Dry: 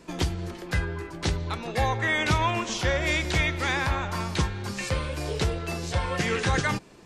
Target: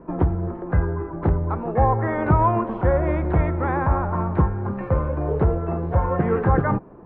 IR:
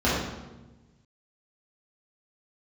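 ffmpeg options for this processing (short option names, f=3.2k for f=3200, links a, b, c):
-af "lowpass=f=1.2k:w=0.5412,lowpass=f=1.2k:w=1.3066,volume=7.5dB"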